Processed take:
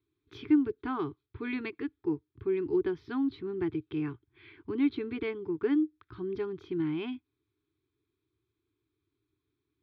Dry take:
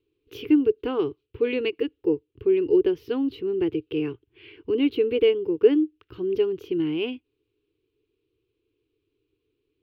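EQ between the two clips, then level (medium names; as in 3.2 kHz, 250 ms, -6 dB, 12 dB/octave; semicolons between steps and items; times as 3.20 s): high-pass 71 Hz; resonant low-pass 3.3 kHz, resonance Q 2.9; static phaser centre 1.2 kHz, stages 4; 0.0 dB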